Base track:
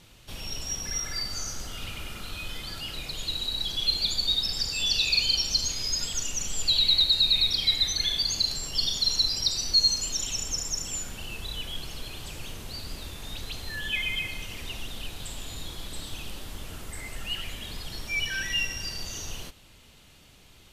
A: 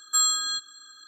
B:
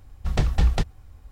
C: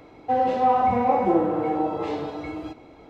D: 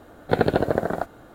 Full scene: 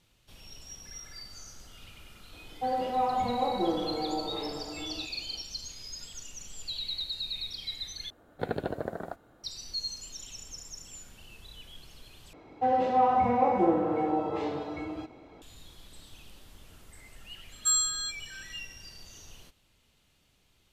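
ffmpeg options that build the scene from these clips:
ffmpeg -i bed.wav -i cue0.wav -i cue1.wav -i cue2.wav -i cue3.wav -filter_complex "[3:a]asplit=2[link_01][link_02];[0:a]volume=-13.5dB[link_03];[1:a]equalizer=frequency=7500:width_type=o:width=1.6:gain=6.5[link_04];[link_03]asplit=3[link_05][link_06][link_07];[link_05]atrim=end=8.104[link_08];[4:a]atrim=end=1.34,asetpts=PTS-STARTPTS,volume=-12.5dB[link_09];[link_06]atrim=start=9.436:end=12.334[link_10];[link_02]atrim=end=3.09,asetpts=PTS-STARTPTS,volume=-4dB[link_11];[link_07]atrim=start=15.416[link_12];[link_01]atrim=end=3.09,asetpts=PTS-STARTPTS,volume=-8.5dB,afade=type=in:duration=0.004:curve=hsin,afade=type=out:start_time=3.086:duration=0.004:curve=hsin,adelay=2330[link_13];[link_04]atrim=end=1.07,asetpts=PTS-STARTPTS,volume=-9dB,afade=type=in:duration=0.004:curve=hsin,afade=type=out:start_time=1.066:duration=0.004:curve=hsin,adelay=17520[link_14];[link_08][link_09]acrossfade=duration=0.004:curve1=hsin:curve2=hsin[link_15];[link_15][link_10]acrossfade=duration=0.004:curve1=hsin:curve2=hsin[link_16];[link_16][link_11]acrossfade=duration=0.004:curve1=hsin:curve2=hsin[link_17];[link_17][link_12]acrossfade=duration=0.004:curve1=hsin:curve2=hsin[link_18];[link_18][link_13][link_14]amix=inputs=3:normalize=0" out.wav

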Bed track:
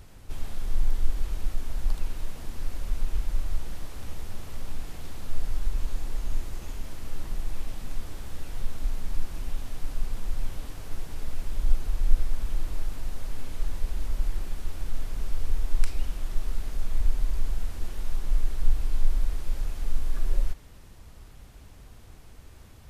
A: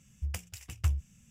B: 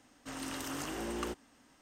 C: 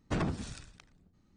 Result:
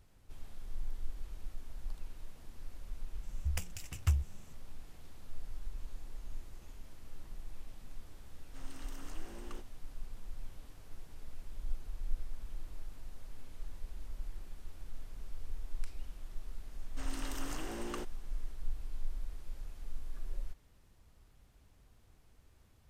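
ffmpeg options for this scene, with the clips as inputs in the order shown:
ffmpeg -i bed.wav -i cue0.wav -i cue1.wav -filter_complex "[2:a]asplit=2[link_01][link_02];[0:a]volume=-15dB[link_03];[1:a]atrim=end=1.3,asetpts=PTS-STARTPTS,volume=-1dB,afade=type=in:duration=0.004:curve=hsin,afade=type=out:start_time=1.296:duration=0.004:curve=hsin,adelay=3230[link_04];[link_01]atrim=end=1.81,asetpts=PTS-STARTPTS,volume=-13.5dB,afade=type=in:duration=0.004:curve=hsin,afade=type=out:start_time=1.806:duration=0.004:curve=hsin,adelay=8280[link_05];[link_02]atrim=end=1.81,asetpts=PTS-STARTPTS,volume=-4dB,afade=type=in:duration=0.004:curve=hsin,afade=type=out:start_time=1.806:duration=0.004:curve=hsin,adelay=16710[link_06];[link_03][link_04][link_05][link_06]amix=inputs=4:normalize=0" out.wav

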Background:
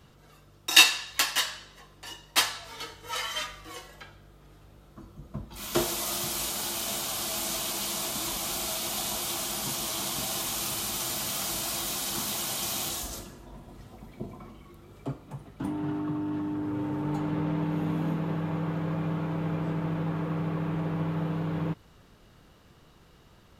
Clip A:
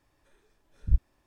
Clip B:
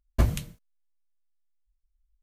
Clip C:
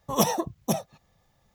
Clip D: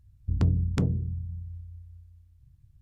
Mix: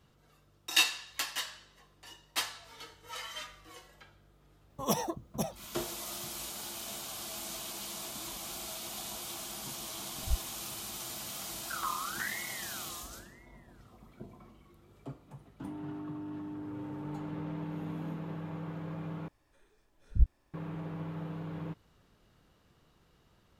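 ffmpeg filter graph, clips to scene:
ffmpeg -i bed.wav -i cue0.wav -i cue1.wav -i cue2.wav -i cue3.wav -filter_complex "[1:a]asplit=2[link_01][link_02];[0:a]volume=-9.5dB[link_03];[4:a]aeval=exprs='val(0)*sin(2*PI*1600*n/s+1600*0.3/0.97*sin(2*PI*0.97*n/s))':channel_layout=same[link_04];[link_03]asplit=2[link_05][link_06];[link_05]atrim=end=19.284[link_07];[link_02]atrim=end=1.26,asetpts=PTS-STARTPTS,volume=-1.5dB[link_08];[link_06]atrim=start=20.536[link_09];[3:a]atrim=end=1.54,asetpts=PTS-STARTPTS,volume=-8dB,afade=type=in:duration=0.004:curve=hsin,afade=type=out:start_time=1.536:duration=0.004:curve=hsin,adelay=4700[link_10];[link_01]atrim=end=1.26,asetpts=PTS-STARTPTS,volume=-9dB,afade=type=in:duration=0.004:curve=hsin,afade=type=out:start_time=1.256:duration=0.004:curve=hsin,adelay=9390[link_11];[link_04]atrim=end=2.81,asetpts=PTS-STARTPTS,volume=-10.5dB,afade=type=in:duration=0.004:curve=hsin,afade=type=out:start_time=2.806:duration=0.004:curve=hsin,adelay=11420[link_12];[link_07][link_08]acrossfade=duration=0.004:curve1=hsin:curve2=hsin[link_13];[link_13][link_09]acrossfade=duration=0.004:curve1=hsin:curve2=hsin[link_14];[link_14][link_10][link_11][link_12]amix=inputs=4:normalize=0" out.wav

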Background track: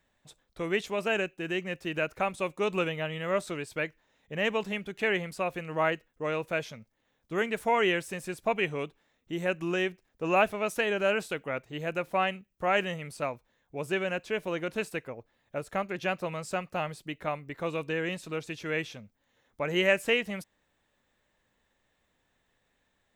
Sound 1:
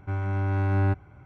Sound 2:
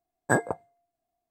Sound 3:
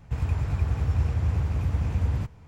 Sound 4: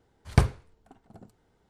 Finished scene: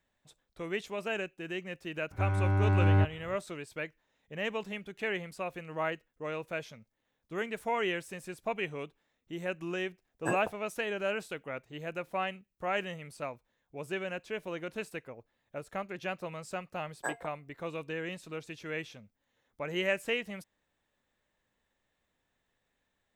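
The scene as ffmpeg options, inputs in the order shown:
ffmpeg -i bed.wav -i cue0.wav -i cue1.wav -filter_complex "[2:a]asplit=2[link_01][link_02];[0:a]volume=-6dB[link_03];[link_02]highpass=570[link_04];[1:a]atrim=end=1.25,asetpts=PTS-STARTPTS,volume=-1dB,afade=type=in:duration=0.004:curve=hsin,afade=type=out:start_time=1.246:duration=0.004:curve=hsin,adelay=2110[link_05];[link_01]atrim=end=1.3,asetpts=PTS-STARTPTS,volume=-10.5dB,afade=type=in:duration=0.004:curve=hsin,afade=type=out:start_time=1.296:duration=0.004:curve=hsin,adelay=9960[link_06];[link_04]atrim=end=1.3,asetpts=PTS-STARTPTS,volume=-10dB,afade=type=in:duration=0.004:curve=hsin,afade=type=out:start_time=1.296:duration=0.004:curve=hsin,adelay=16740[link_07];[link_03][link_05][link_06][link_07]amix=inputs=4:normalize=0" out.wav

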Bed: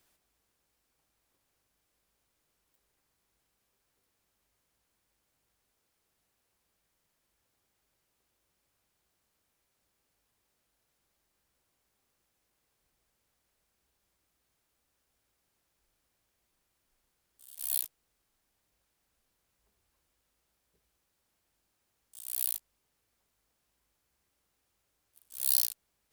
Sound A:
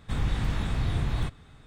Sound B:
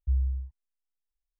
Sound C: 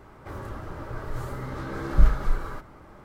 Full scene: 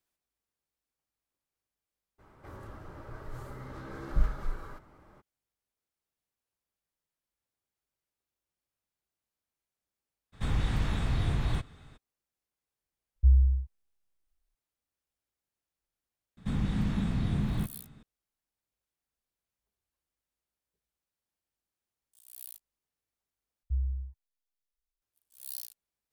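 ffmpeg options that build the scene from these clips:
ffmpeg -i bed.wav -i cue0.wav -i cue1.wav -i cue2.wav -filter_complex "[1:a]asplit=2[link_01][link_02];[2:a]asplit=2[link_03][link_04];[0:a]volume=-14dB[link_05];[link_03]lowshelf=frequency=90:gain=11.5[link_06];[link_02]equalizer=frequency=200:width_type=o:width=0.91:gain=15[link_07];[link_05]asplit=2[link_08][link_09];[link_08]atrim=end=23.634[link_10];[link_04]atrim=end=1.39,asetpts=PTS-STARTPTS,volume=-4.5dB[link_11];[link_09]atrim=start=25.016[link_12];[3:a]atrim=end=3.04,asetpts=PTS-STARTPTS,volume=-9.5dB,afade=type=in:duration=0.02,afade=type=out:start_time=3.02:duration=0.02,adelay=2180[link_13];[link_01]atrim=end=1.66,asetpts=PTS-STARTPTS,volume=-1.5dB,afade=type=in:duration=0.02,afade=type=out:start_time=1.64:duration=0.02,adelay=10320[link_14];[link_06]atrim=end=1.39,asetpts=PTS-STARTPTS,volume=-2dB,afade=type=in:duration=0.004:curve=hsin,afade=type=out:start_time=1.386:duration=0.004:curve=hsin,adelay=580356S[link_15];[link_07]atrim=end=1.66,asetpts=PTS-STARTPTS,volume=-6.5dB,afade=type=in:duration=0.004:curve=hsin,afade=type=out:start_time=1.656:duration=0.004:curve=hsin,adelay=16370[link_16];[link_10][link_11]acrossfade=duration=0.004:curve1=hsin:curve2=hsin[link_17];[link_17][link_12]acrossfade=duration=0.004:curve1=hsin:curve2=hsin[link_18];[link_18][link_13][link_14][link_15][link_16]amix=inputs=5:normalize=0" out.wav

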